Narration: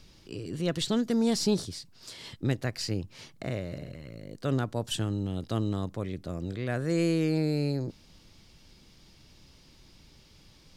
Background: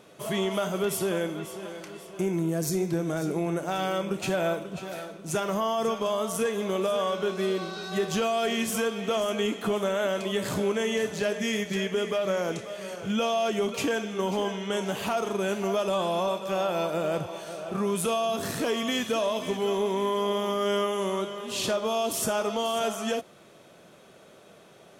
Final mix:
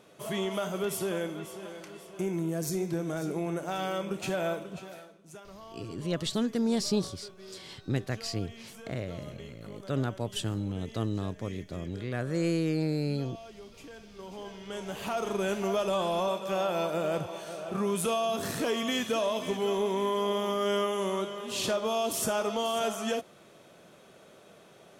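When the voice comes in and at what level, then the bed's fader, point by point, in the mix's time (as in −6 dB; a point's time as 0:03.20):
5.45 s, −2.0 dB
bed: 0:04.72 −4 dB
0:05.42 −21 dB
0:13.89 −21 dB
0:15.31 −2 dB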